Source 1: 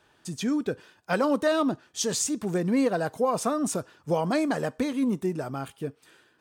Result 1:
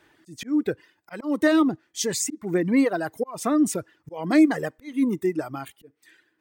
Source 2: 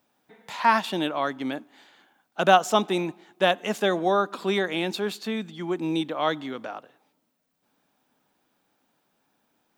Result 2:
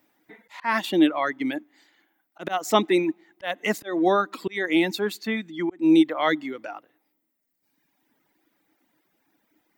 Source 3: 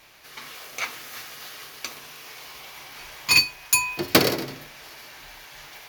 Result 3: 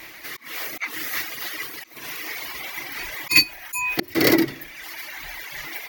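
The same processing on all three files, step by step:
graphic EQ with 31 bands 315 Hz +12 dB, 2 kHz +11 dB, 16 kHz +12 dB; slow attack 236 ms; reverb removal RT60 1.7 s; normalise loudness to -24 LUFS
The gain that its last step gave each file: +1.0 dB, +1.0 dB, +8.5 dB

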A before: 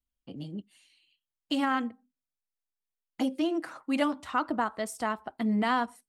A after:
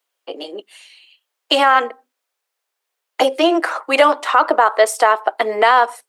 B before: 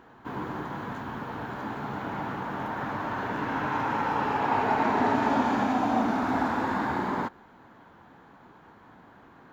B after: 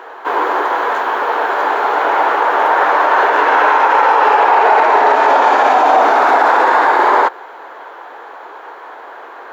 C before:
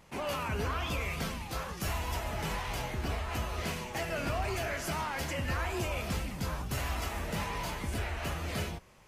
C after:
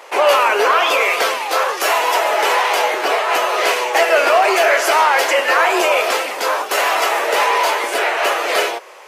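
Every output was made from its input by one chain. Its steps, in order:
steep high-pass 410 Hz 36 dB/octave; treble shelf 3.6 kHz -7.5 dB; peak limiter -24.5 dBFS; peak normalisation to -2 dBFS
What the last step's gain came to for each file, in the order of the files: +22.5 dB, +22.5 dB, +23.5 dB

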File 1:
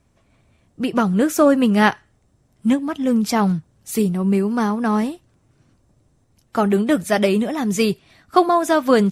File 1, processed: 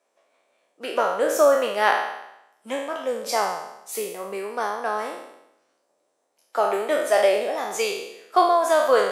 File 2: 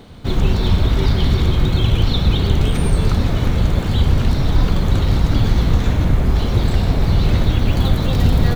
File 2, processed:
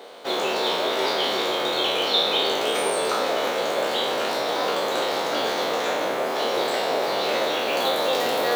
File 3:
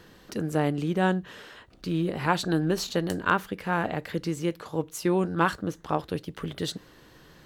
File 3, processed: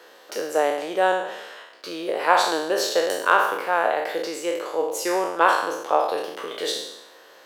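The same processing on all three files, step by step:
spectral sustain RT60 0.85 s; ladder high-pass 440 Hz, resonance 40%; normalise loudness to -23 LUFS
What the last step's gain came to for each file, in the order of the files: +2.0 dB, +8.5 dB, +11.0 dB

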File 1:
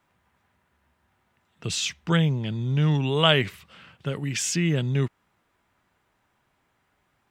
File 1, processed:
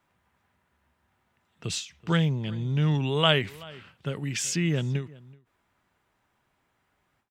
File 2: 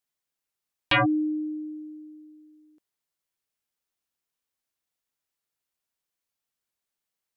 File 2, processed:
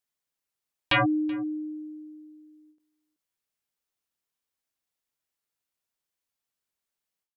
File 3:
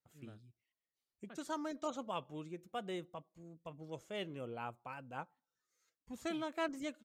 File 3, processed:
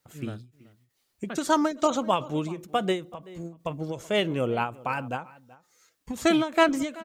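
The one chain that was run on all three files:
echo from a far wall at 65 m, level -21 dB; endings held to a fixed fall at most 170 dB/s; normalise loudness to -27 LUFS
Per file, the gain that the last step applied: -2.5 dB, -1.0 dB, +18.5 dB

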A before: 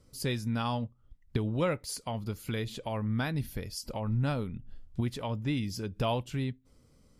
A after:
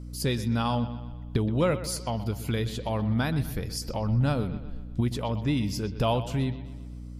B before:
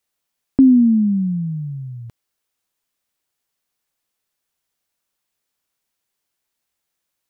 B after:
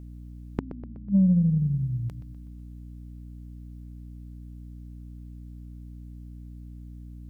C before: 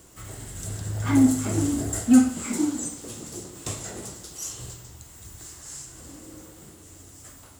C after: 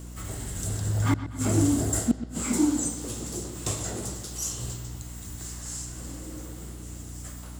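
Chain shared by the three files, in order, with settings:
dynamic bell 2.1 kHz, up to -3 dB, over -50 dBFS, Q 1.3; inverted gate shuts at -12 dBFS, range -36 dB; bucket-brigade echo 124 ms, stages 4096, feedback 52%, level -14 dB; saturation -13.5 dBFS; hum 60 Hz, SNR 11 dB; peak normalisation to -12 dBFS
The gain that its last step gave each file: +5.0 dB, +2.0 dB, +2.5 dB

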